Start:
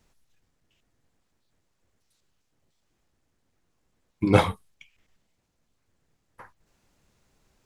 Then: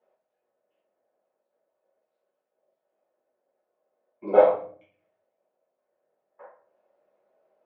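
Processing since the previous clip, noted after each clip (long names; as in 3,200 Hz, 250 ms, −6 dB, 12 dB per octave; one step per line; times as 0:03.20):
four-pole ladder band-pass 630 Hz, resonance 70%
rectangular room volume 46 cubic metres, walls mixed, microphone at 1.4 metres
level +3.5 dB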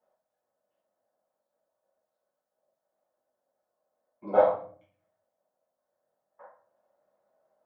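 graphic EQ with 15 bands 100 Hz +3 dB, 400 Hz −12 dB, 2,500 Hz −11 dB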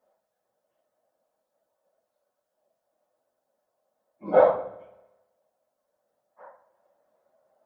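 random phases in long frames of 50 ms
spring reverb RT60 1.1 s, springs 50/55 ms, chirp 25 ms, DRR 16 dB
level +4 dB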